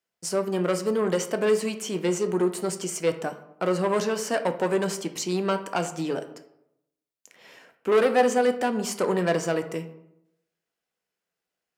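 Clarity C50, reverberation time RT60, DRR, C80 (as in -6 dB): 12.0 dB, 0.80 s, 7.5 dB, 14.5 dB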